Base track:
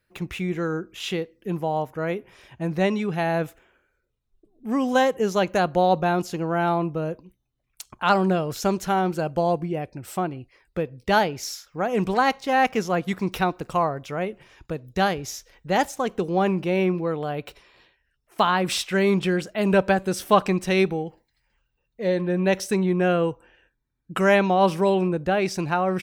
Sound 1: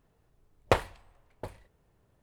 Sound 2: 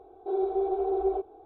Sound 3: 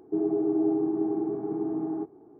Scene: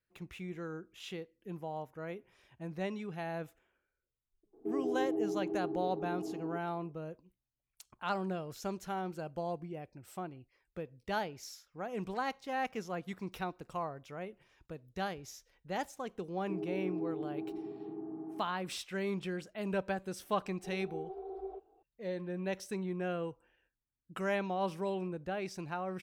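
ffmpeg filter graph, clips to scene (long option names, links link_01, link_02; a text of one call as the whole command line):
ffmpeg -i bed.wav -i cue0.wav -i cue1.wav -i cue2.wav -filter_complex "[3:a]asplit=2[link_01][link_02];[0:a]volume=-15.5dB[link_03];[link_01]equalizer=frequency=520:width=1.5:gain=10.5,atrim=end=2.39,asetpts=PTS-STARTPTS,volume=-14dB,afade=type=in:duration=0.004:curve=hsin,afade=type=out:start_time=2.386:duration=0.004:curve=hsin,adelay=199773S[link_04];[link_02]atrim=end=2.39,asetpts=PTS-STARTPTS,volume=-13dB,afade=type=in:duration=0.004:curve=hsin,afade=type=out:start_time=2.386:duration=0.004:curve=hsin,adelay=16370[link_05];[2:a]atrim=end=1.45,asetpts=PTS-STARTPTS,volume=-16dB,afade=type=in:duration=0.004:curve=hsin,afade=type=out:start_time=1.446:duration=0.004:curve=hsin,adelay=20380[link_06];[link_03][link_04][link_05][link_06]amix=inputs=4:normalize=0" out.wav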